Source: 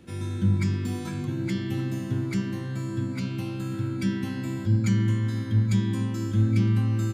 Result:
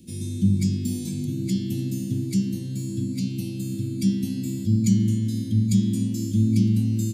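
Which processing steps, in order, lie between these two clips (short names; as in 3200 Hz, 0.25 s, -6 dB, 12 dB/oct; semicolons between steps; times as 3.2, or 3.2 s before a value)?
EQ curve 120 Hz 0 dB, 220 Hz +7 dB, 1300 Hz -29 dB, 2400 Hz -6 dB, 4500 Hz +5 dB, 10000 Hz +11 dB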